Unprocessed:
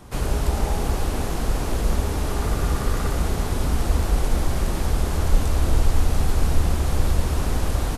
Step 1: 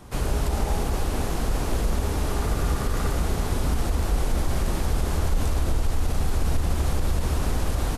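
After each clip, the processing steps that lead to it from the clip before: limiter -13 dBFS, peak gain reduction 8 dB; gain -1 dB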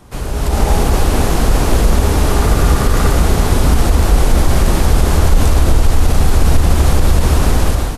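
AGC gain up to 11 dB; gain +2.5 dB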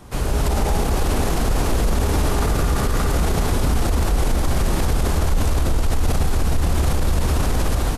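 limiter -11 dBFS, peak gain reduction 9.5 dB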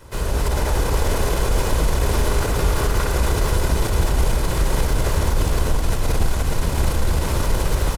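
minimum comb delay 2 ms; echo 0.473 s -5 dB

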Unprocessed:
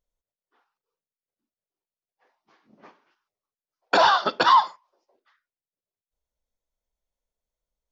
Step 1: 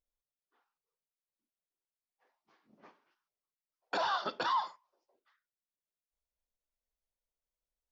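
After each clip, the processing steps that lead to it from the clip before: limiter -15.5 dBFS, peak gain reduction 8 dB; gain -8.5 dB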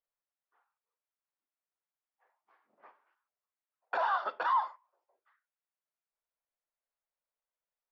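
three-band isolator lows -23 dB, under 520 Hz, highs -22 dB, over 2200 Hz; gain +4 dB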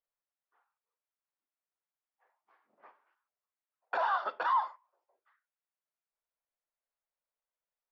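nothing audible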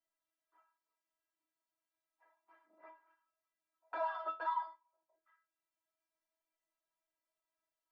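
metallic resonator 320 Hz, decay 0.22 s, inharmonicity 0.002; three-band squash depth 40%; gain +5.5 dB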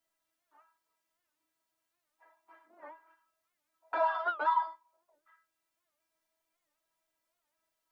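record warp 78 rpm, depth 160 cents; gain +8 dB

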